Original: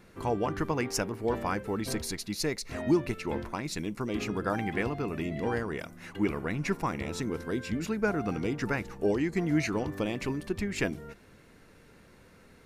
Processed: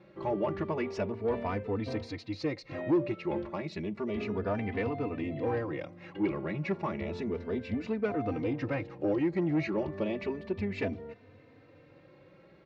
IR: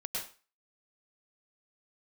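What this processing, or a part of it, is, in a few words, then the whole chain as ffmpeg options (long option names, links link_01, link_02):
barber-pole flanger into a guitar amplifier: -filter_complex "[0:a]highshelf=frequency=9700:gain=8.5,asplit=2[link_01][link_02];[link_02]adelay=3.2,afreqshift=0.32[link_03];[link_01][link_03]amix=inputs=2:normalize=1,asoftclip=type=tanh:threshold=-25.5dB,highpass=94,equalizer=frequency=96:width_type=q:width=4:gain=8,equalizer=frequency=340:width_type=q:width=4:gain=4,equalizer=frequency=570:width_type=q:width=4:gain=8,equalizer=frequency=1500:width_type=q:width=4:gain=-6,equalizer=frequency=3200:width_type=q:width=4:gain=-4,lowpass=frequency=3700:width=0.5412,lowpass=frequency=3700:width=1.3066,volume=1dB"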